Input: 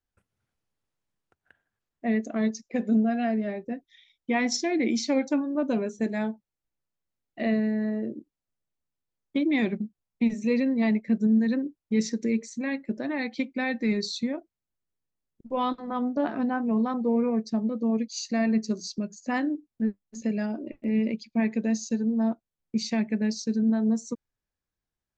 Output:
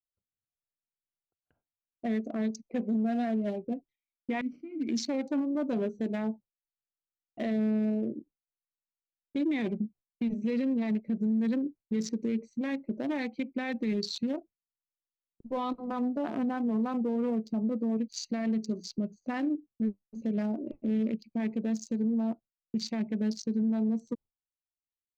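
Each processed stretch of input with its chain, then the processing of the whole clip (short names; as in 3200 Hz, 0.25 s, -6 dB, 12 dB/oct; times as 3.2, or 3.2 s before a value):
4.41–4.89 minimum comb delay 0.39 ms + vowel filter i
whole clip: Wiener smoothing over 25 samples; gate with hold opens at -52 dBFS; limiter -23 dBFS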